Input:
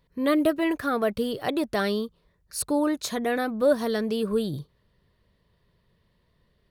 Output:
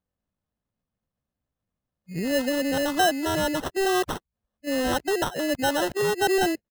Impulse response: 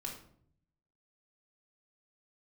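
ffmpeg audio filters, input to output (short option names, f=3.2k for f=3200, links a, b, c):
-filter_complex "[0:a]areverse,afftdn=nr=17:nf=-38,agate=range=-7dB:threshold=-34dB:ratio=16:detection=peak,asplit=2[a][b];[b]acompressor=threshold=-33dB:ratio=16,volume=-3dB[c];[a][c]amix=inputs=2:normalize=0,asetrate=55563,aresample=44100,atempo=0.793701,acrusher=samples=19:mix=1:aa=0.000001,aeval=exprs='0.316*(cos(1*acos(clip(val(0)/0.316,-1,1)))-cos(1*PI/2))+0.0224*(cos(5*acos(clip(val(0)/0.316,-1,1)))-cos(5*PI/2))':c=same,volume=-2dB"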